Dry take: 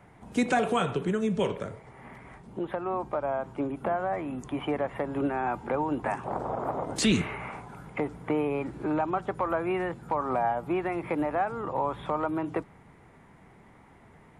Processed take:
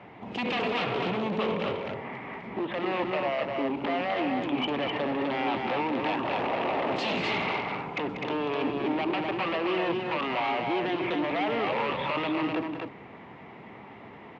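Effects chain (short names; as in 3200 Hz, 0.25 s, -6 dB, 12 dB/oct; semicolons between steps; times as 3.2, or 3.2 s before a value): in parallel at +1.5 dB: negative-ratio compressor -35 dBFS, ratio -1; on the sum: wavefolder -23 dBFS; speaker cabinet 160–4000 Hz, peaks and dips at 160 Hz -5 dB, 1500 Hz -6 dB, 2700 Hz +5 dB; loudspeakers at several distances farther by 65 m -10 dB, 87 m -4 dB; gain -1 dB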